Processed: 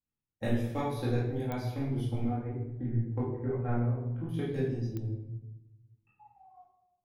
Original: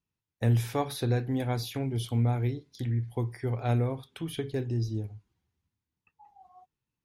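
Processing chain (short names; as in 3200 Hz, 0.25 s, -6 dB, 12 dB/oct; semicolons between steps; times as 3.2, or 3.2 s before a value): 2.27–4.29 LPF 1800 Hz 24 dB/oct; transient shaper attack +8 dB, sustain -7 dB; chorus 1.1 Hz, delay 15.5 ms, depth 5.2 ms; shoebox room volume 380 m³, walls mixed, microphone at 2.2 m; pops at 1.52/4.97, -13 dBFS; mismatched tape noise reduction decoder only; gain -8.5 dB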